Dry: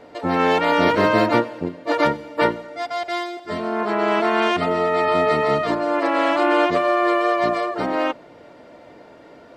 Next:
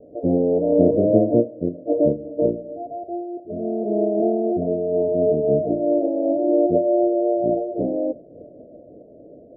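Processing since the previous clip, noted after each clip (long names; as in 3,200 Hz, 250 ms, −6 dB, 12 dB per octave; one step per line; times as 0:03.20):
Butterworth low-pass 650 Hz 72 dB per octave
amplitude modulation by smooth noise, depth 65%
level +6 dB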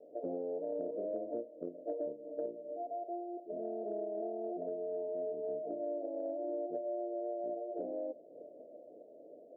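high-pass filter 470 Hz 12 dB per octave
downward compressor 6 to 1, threshold −30 dBFS, peak gain reduction 15 dB
level −6 dB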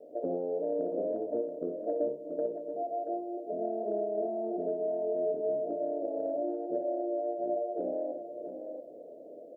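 multi-tap delay 62/680 ms −8.5/−8.5 dB
level +5.5 dB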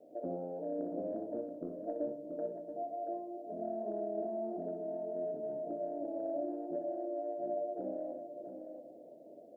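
parametric band 470 Hz −11 dB 0.67 octaves
on a send at −7 dB: convolution reverb RT60 0.65 s, pre-delay 6 ms
on the sum: level −1 dB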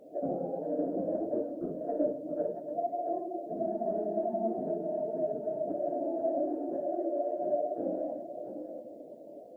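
random phases in long frames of 50 ms
level +6 dB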